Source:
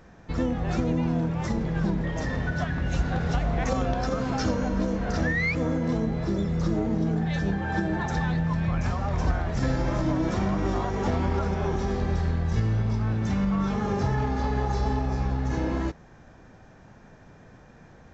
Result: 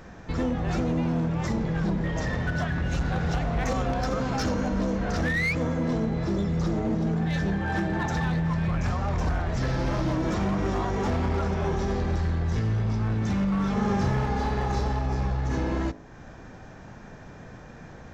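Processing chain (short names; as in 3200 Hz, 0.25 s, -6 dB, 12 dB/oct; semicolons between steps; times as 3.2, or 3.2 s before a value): 9.6–10.16 delta modulation 32 kbps, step -37.5 dBFS; de-hum 52.55 Hz, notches 19; in parallel at +1.5 dB: compressor 6:1, threshold -43 dBFS, peak gain reduction 20.5 dB; on the sum: overloaded stage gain 21 dB; 13.73–14.83 doubler 36 ms -4.5 dB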